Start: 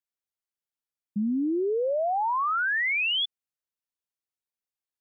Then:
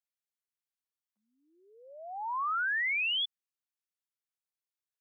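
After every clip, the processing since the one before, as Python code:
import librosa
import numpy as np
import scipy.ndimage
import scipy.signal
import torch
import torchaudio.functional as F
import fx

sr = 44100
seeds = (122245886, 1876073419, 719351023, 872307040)

y = scipy.signal.sosfilt(scipy.signal.butter(4, 1000.0, 'highpass', fs=sr, output='sos'), x)
y = y * librosa.db_to_amplitude(-4.5)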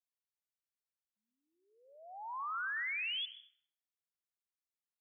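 y = fx.peak_eq(x, sr, hz=330.0, db=-8.5, octaves=1.2)
y = fx.rev_plate(y, sr, seeds[0], rt60_s=0.87, hf_ratio=0.55, predelay_ms=90, drr_db=10.5)
y = y * librosa.db_to_amplitude(-7.5)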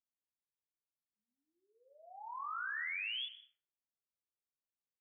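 y = fx.env_lowpass(x, sr, base_hz=720.0, full_db=-40.0)
y = fx.peak_eq(y, sr, hz=650.0, db=-2.0, octaves=0.77)
y = fx.doubler(y, sr, ms=29.0, db=-4)
y = y * librosa.db_to_amplitude(-3.5)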